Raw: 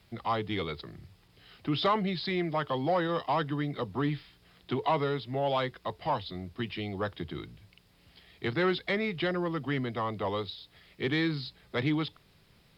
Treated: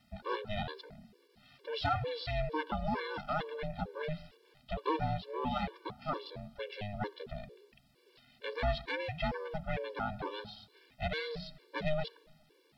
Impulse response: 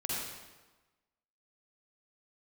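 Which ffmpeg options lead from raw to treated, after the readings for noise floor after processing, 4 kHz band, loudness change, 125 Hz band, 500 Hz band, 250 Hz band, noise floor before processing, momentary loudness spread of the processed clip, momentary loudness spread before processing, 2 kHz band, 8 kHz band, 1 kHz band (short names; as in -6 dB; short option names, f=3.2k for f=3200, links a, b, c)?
-68 dBFS, -6.5 dB, -6.0 dB, -5.5 dB, -6.0 dB, -10.0 dB, -63 dBFS, 11 LU, 10 LU, -5.0 dB, n/a, -5.0 dB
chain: -filter_complex "[0:a]aeval=exprs='val(0)*sin(2*PI*310*n/s)':c=same,asplit=2[a][b];[1:a]atrim=start_sample=2205,lowshelf=f=140:g=7.5[c];[b][c]afir=irnorm=-1:irlink=0,volume=-24.5dB[d];[a][d]amix=inputs=2:normalize=0,afftfilt=real='re*gt(sin(2*PI*2.2*pts/sr)*(1-2*mod(floor(b*sr/1024/300),2)),0)':imag='im*gt(sin(2*PI*2.2*pts/sr)*(1-2*mod(floor(b*sr/1024/300),2)),0)':win_size=1024:overlap=0.75"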